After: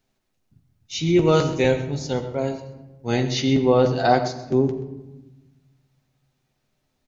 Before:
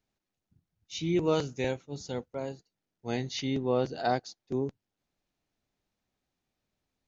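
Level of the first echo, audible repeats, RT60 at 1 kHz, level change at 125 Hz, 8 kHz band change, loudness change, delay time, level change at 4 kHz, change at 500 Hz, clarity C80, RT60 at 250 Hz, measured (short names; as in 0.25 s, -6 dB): -15.5 dB, 1, 1.0 s, +12.5 dB, n/a, +11.0 dB, 0.129 s, +9.5 dB, +11.0 dB, 10.0 dB, 1.7 s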